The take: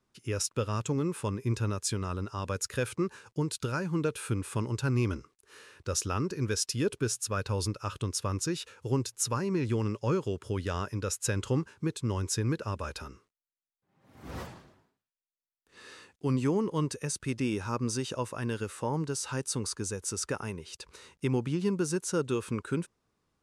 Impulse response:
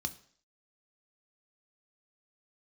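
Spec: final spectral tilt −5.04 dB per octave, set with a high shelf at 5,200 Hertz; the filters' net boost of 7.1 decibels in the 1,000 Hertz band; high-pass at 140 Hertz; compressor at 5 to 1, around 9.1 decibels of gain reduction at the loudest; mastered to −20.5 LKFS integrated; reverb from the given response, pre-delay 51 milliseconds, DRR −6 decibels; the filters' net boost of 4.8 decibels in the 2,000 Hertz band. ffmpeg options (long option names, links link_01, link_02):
-filter_complex "[0:a]highpass=140,equalizer=frequency=1000:width_type=o:gain=7.5,equalizer=frequency=2000:width_type=o:gain=4.5,highshelf=frequency=5200:gain=-7,acompressor=threshold=-33dB:ratio=5,asplit=2[link_01][link_02];[1:a]atrim=start_sample=2205,adelay=51[link_03];[link_02][link_03]afir=irnorm=-1:irlink=0,volume=5dB[link_04];[link_01][link_04]amix=inputs=2:normalize=0,volume=8.5dB"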